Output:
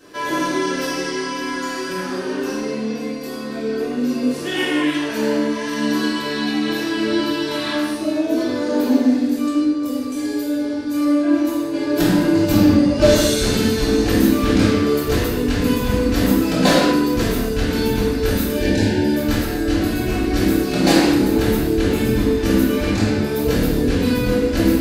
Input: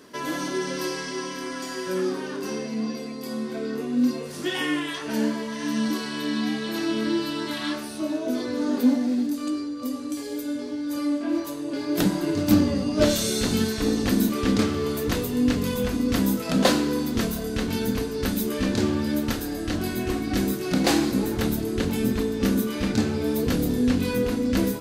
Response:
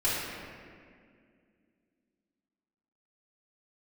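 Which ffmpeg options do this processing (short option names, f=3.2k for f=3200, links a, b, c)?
-filter_complex "[0:a]asplit=3[a][b][c];[a]afade=t=out:st=18.51:d=0.02[d];[b]asuperstop=centerf=1200:order=20:qfactor=2.7,afade=t=in:st=18.51:d=0.02,afade=t=out:st=19.13:d=0.02[e];[c]afade=t=in:st=19.13:d=0.02[f];[d][e][f]amix=inputs=3:normalize=0[g];[1:a]atrim=start_sample=2205,afade=t=out:st=0.3:d=0.01,atrim=end_sample=13671[h];[g][h]afir=irnorm=-1:irlink=0,volume=-3dB"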